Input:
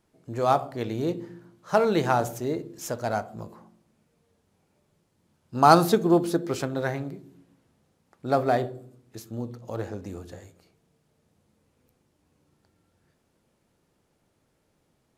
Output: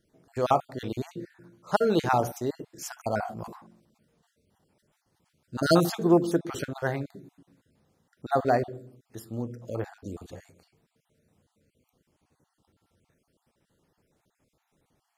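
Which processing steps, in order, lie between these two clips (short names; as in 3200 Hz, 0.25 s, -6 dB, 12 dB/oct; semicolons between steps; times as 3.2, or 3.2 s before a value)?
random spectral dropouts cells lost 36%; 3.12–5.75 sustainer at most 82 dB/s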